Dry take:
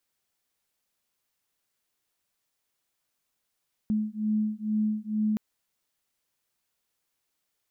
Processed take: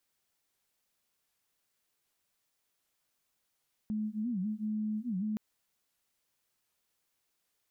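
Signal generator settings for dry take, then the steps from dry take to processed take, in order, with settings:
two tones that beat 213 Hz, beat 2.2 Hz, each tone −28 dBFS 1.47 s
brickwall limiter −30.5 dBFS
wow of a warped record 78 rpm, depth 250 cents

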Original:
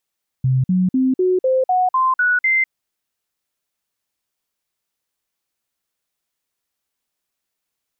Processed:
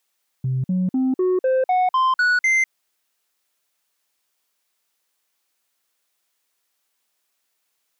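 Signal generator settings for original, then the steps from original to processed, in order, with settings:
stepped sweep 130 Hz up, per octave 2, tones 9, 0.20 s, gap 0.05 s −13 dBFS
high-pass filter 500 Hz 6 dB per octave
in parallel at +2 dB: brickwall limiter −23.5 dBFS
on the sum: soft clipping −15 dBFS

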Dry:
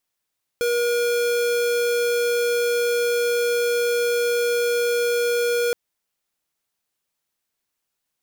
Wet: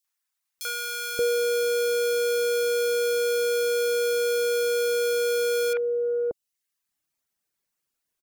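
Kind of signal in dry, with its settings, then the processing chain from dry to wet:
tone square 478 Hz −21 dBFS 5.12 s
three-band delay without the direct sound highs, mids, lows 40/580 ms, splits 820/3,300 Hz
reverb reduction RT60 0.67 s

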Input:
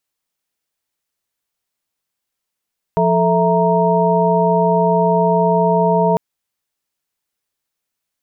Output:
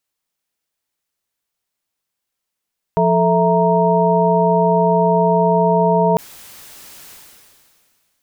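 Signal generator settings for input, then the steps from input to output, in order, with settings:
held notes F3/A4/E5/A#5 sine, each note −17 dBFS 3.20 s
level that may fall only so fast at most 27 dB per second

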